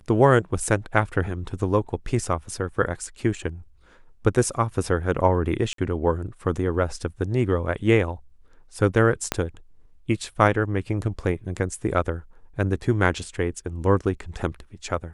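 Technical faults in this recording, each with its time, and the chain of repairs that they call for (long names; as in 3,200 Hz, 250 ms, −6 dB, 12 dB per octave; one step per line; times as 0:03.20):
0:05.73–0:05.78: drop-out 53 ms
0:09.32: click −6 dBFS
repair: click removal
repair the gap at 0:05.73, 53 ms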